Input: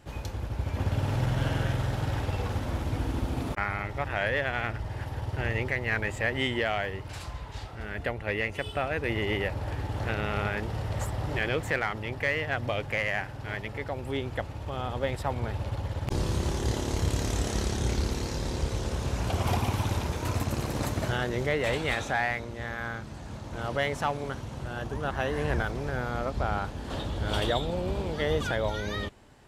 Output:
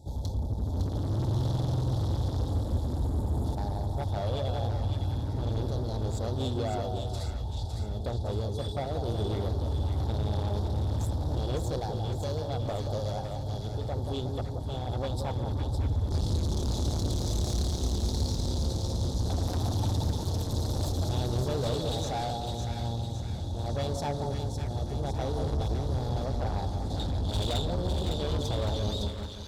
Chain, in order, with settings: dynamic EQ 4200 Hz, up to +7 dB, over -50 dBFS, Q 1.2; spectral delete 2.49–3.44, 2100–6600 Hz; bell 81 Hz +10 dB 1.5 oct; FFT band-reject 940–3300 Hz; soft clip -27.5 dBFS, distortion -7 dB; split-band echo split 1100 Hz, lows 0.18 s, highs 0.558 s, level -5 dB

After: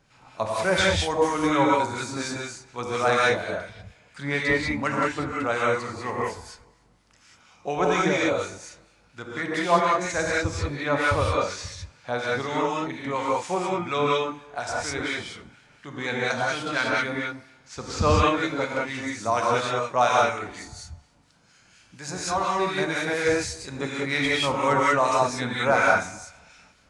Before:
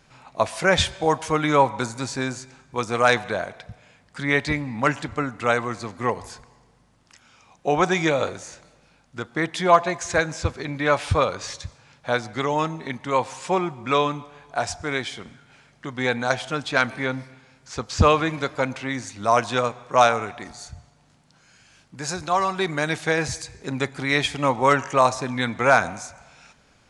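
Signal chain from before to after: non-linear reverb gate 0.22 s rising, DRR -4.5 dB; harmonic tremolo 4.2 Hz, depth 50%, crossover 1300 Hz; gain -4.5 dB

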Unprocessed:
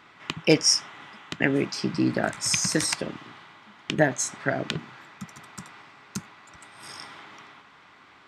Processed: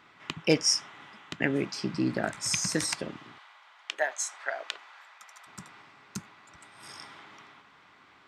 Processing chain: 3.38–5.47 HPF 630 Hz 24 dB/oct; gain -4.5 dB

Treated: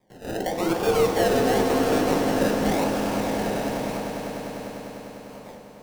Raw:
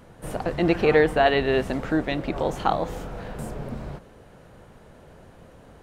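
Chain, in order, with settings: gate with hold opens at -38 dBFS; weighting filter A; in parallel at +2.5 dB: compressor, threshold -33 dBFS, peak gain reduction 17 dB; on the sum: decimation with a swept rate 31×, swing 60% 0.91 Hz; soft clip -20.5 dBFS, distortion -8 dB; swelling echo 0.1 s, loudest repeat 5, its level -10 dB; on a send at -2 dB: reverb RT60 0.45 s, pre-delay 3 ms; on the sum: gain -1.5 dB

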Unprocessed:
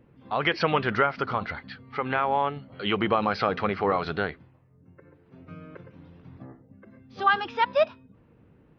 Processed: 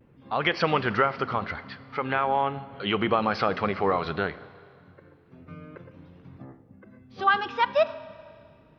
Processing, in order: vibrato 0.68 Hz 42 cents; Schroeder reverb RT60 2.2 s, combs from 29 ms, DRR 16 dB

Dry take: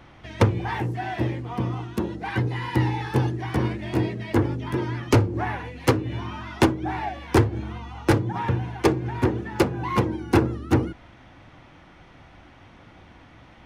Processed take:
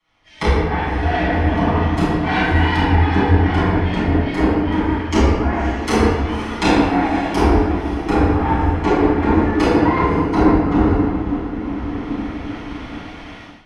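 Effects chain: frequency shift -39 Hz; treble ducked by the level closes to 1000 Hz, closed at -19 dBFS; low shelf 350 Hz -10.5 dB; diffused feedback echo 0.55 s, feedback 50%, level -10 dB; reverb RT60 2.2 s, pre-delay 6 ms, DRR -11.5 dB; AGC; three-band expander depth 70%; gain -3 dB

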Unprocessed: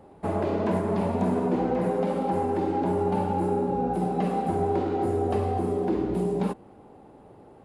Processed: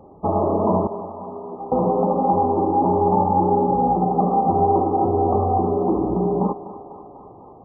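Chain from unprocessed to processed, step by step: brick-wall FIR low-pass 1300 Hz; dynamic EQ 850 Hz, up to +6 dB, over -42 dBFS, Q 1.9; 0.87–1.72 resonator 400 Hz, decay 0.66 s, mix 90%; thinning echo 0.248 s, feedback 80%, high-pass 420 Hz, level -12.5 dB; gain +5 dB

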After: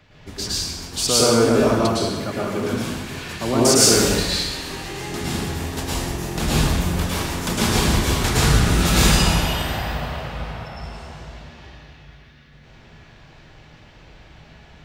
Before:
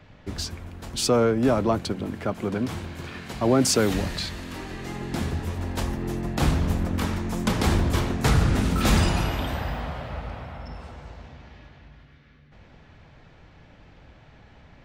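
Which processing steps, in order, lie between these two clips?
high shelf 2200 Hz +9 dB; plate-style reverb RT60 1.2 s, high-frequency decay 0.9×, pre-delay 95 ms, DRR -7 dB; gain -4.5 dB

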